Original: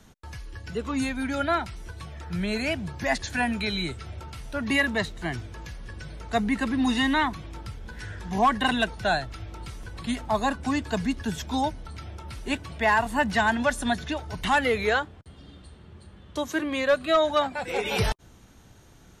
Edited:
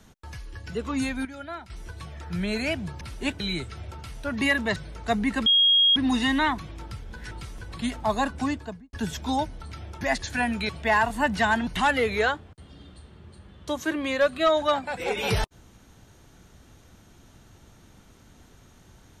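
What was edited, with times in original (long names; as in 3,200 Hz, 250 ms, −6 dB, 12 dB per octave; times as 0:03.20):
0:01.25–0:01.70: clip gain −12 dB
0:03.01–0:03.69: swap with 0:12.26–0:12.65
0:05.05–0:06.01: remove
0:06.71: insert tone 3,270 Hz −15.5 dBFS 0.50 s
0:08.06–0:09.56: remove
0:10.63–0:11.18: fade out and dull
0:13.63–0:14.35: remove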